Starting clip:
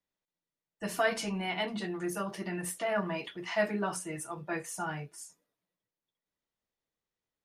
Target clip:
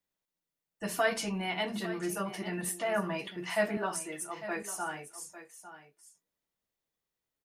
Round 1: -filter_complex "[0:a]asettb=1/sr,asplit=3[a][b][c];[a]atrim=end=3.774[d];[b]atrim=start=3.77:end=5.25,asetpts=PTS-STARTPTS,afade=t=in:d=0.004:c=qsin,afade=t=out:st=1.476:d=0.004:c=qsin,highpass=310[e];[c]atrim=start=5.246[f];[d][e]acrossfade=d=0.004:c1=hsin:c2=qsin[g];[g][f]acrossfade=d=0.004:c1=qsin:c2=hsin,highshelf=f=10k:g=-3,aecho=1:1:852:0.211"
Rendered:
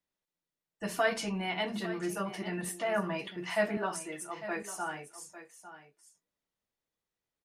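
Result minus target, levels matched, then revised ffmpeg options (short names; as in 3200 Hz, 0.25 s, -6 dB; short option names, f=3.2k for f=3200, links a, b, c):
8000 Hz band -3.0 dB
-filter_complex "[0:a]asettb=1/sr,asplit=3[a][b][c];[a]atrim=end=3.774[d];[b]atrim=start=3.77:end=5.25,asetpts=PTS-STARTPTS,afade=t=in:d=0.004:c=qsin,afade=t=out:st=1.476:d=0.004:c=qsin,highpass=310[e];[c]atrim=start=5.246[f];[d][e]acrossfade=d=0.004:c1=hsin:c2=qsin[g];[g][f]acrossfade=d=0.004:c1=qsin:c2=hsin,highshelf=f=10k:g=6,aecho=1:1:852:0.211"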